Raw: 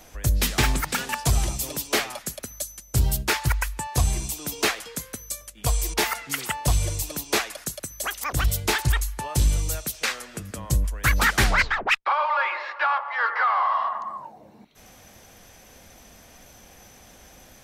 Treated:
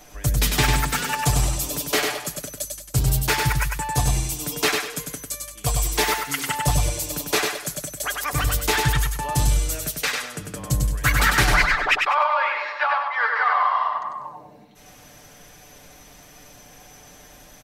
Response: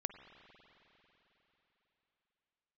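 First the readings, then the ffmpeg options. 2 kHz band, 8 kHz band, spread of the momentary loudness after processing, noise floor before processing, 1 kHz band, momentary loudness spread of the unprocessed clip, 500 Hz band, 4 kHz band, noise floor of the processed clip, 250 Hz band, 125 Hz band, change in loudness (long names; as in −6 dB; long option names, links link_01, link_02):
+3.0 dB, +3.0 dB, 11 LU, −51 dBFS, +3.0 dB, 11 LU, +3.5 dB, +3.0 dB, −48 dBFS, +2.5 dB, +2.0 dB, +2.5 dB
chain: -filter_complex "[0:a]aecho=1:1:6.8:0.57,asplit=2[link_01][link_02];[link_02]aecho=0:1:98|196|294|392:0.631|0.202|0.0646|0.0207[link_03];[link_01][link_03]amix=inputs=2:normalize=0"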